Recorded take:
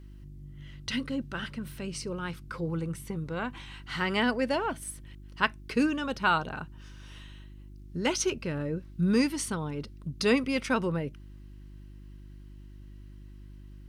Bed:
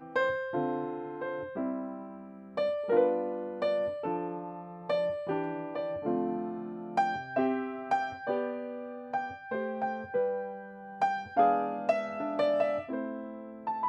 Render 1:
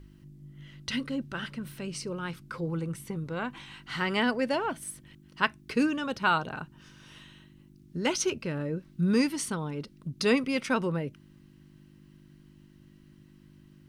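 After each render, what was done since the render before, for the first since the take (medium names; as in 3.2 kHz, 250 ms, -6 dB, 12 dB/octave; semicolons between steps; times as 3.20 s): de-hum 50 Hz, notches 2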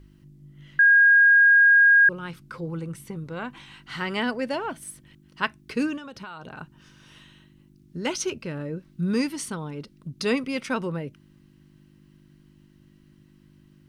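0.79–2.09 s: bleep 1.63 kHz -12 dBFS; 5.97–6.59 s: compression 16:1, threshold -35 dBFS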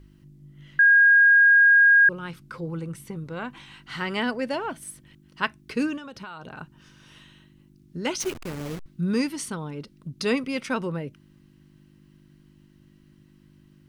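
8.20–8.86 s: send-on-delta sampling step -32 dBFS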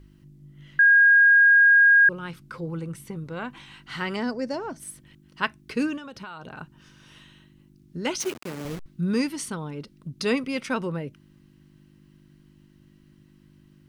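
4.16–4.80 s: FFT filter 390 Hz 0 dB, 2.1 kHz -8 dB, 3.2 kHz -14 dB, 5.5 kHz +8 dB, 9.7 kHz -9 dB; 8.21–8.65 s: high-pass 160 Hz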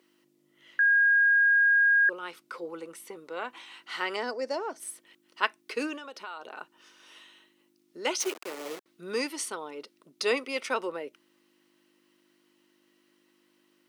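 high-pass 370 Hz 24 dB/octave; band-stop 1.6 kHz, Q 15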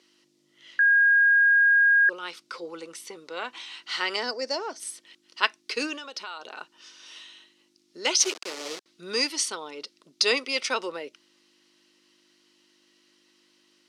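Bessel low-pass 9.6 kHz, order 2; peaking EQ 5 kHz +13 dB 1.7 oct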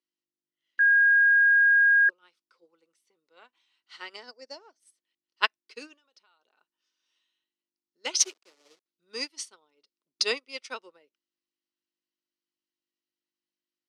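upward expansion 2.5:1, over -39 dBFS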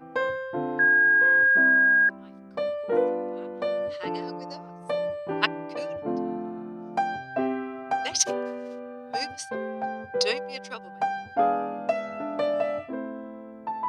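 add bed +1.5 dB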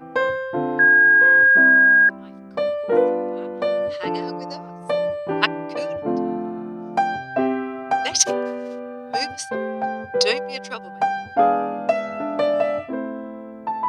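trim +6 dB; peak limiter -1 dBFS, peak gain reduction 2 dB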